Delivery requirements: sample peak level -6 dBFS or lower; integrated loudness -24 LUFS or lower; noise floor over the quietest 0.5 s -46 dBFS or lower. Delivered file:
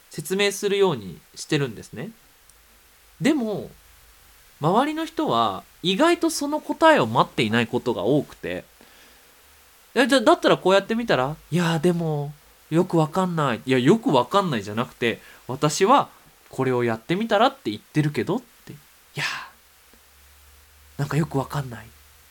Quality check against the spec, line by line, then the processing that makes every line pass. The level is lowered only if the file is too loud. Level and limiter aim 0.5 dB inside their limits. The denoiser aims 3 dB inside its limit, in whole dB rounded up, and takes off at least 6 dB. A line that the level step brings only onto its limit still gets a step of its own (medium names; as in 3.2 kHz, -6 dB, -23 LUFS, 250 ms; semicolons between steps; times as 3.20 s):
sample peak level -4.0 dBFS: fail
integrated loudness -22.0 LUFS: fail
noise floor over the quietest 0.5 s -54 dBFS: pass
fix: trim -2.5 dB